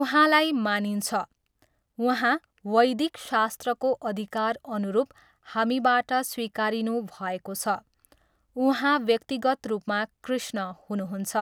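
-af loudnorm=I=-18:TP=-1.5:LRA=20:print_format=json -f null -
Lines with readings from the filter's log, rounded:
"input_i" : "-26.4",
"input_tp" : "-7.3",
"input_lra" : "1.8",
"input_thresh" : "-36.8",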